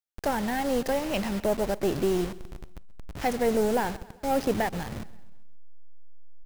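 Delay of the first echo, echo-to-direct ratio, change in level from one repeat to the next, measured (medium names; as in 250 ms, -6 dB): 132 ms, -18.5 dB, -6.0 dB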